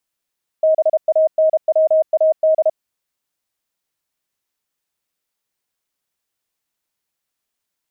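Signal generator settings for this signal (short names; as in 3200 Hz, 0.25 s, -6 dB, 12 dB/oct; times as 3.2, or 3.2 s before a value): Morse "BANWAD" 32 wpm 631 Hz -10 dBFS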